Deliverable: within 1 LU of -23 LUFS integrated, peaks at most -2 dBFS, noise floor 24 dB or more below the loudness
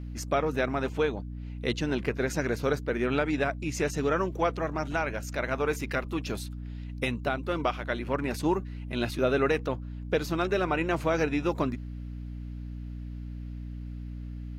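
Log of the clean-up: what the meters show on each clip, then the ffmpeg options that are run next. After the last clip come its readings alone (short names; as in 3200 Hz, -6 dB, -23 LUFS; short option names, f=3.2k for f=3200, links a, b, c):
hum 60 Hz; harmonics up to 300 Hz; hum level -35 dBFS; loudness -30.0 LUFS; peak -14.5 dBFS; loudness target -23.0 LUFS
-> -af "bandreject=f=60:t=h:w=4,bandreject=f=120:t=h:w=4,bandreject=f=180:t=h:w=4,bandreject=f=240:t=h:w=4,bandreject=f=300:t=h:w=4"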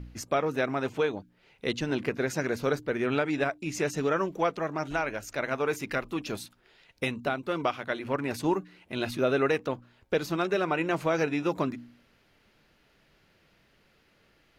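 hum none; loudness -30.0 LUFS; peak -15.0 dBFS; loudness target -23.0 LUFS
-> -af "volume=7dB"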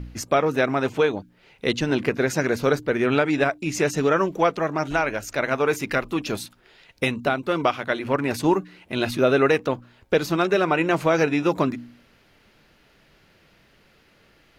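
loudness -23.0 LUFS; peak -8.0 dBFS; noise floor -59 dBFS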